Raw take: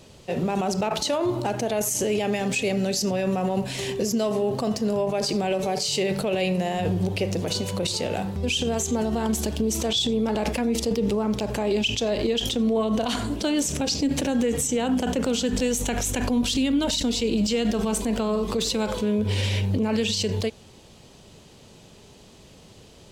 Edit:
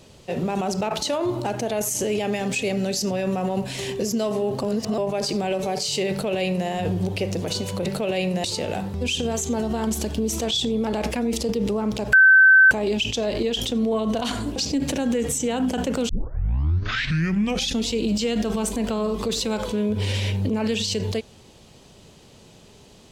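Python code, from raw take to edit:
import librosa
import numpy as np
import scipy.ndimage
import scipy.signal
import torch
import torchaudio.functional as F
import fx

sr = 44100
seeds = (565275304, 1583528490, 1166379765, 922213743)

y = fx.edit(x, sr, fx.reverse_span(start_s=4.63, length_s=0.35),
    fx.duplicate(start_s=6.1, length_s=0.58, to_s=7.86),
    fx.insert_tone(at_s=11.55, length_s=0.58, hz=1540.0, db=-9.0),
    fx.cut(start_s=13.4, length_s=0.45),
    fx.tape_start(start_s=15.38, length_s=1.8), tone=tone)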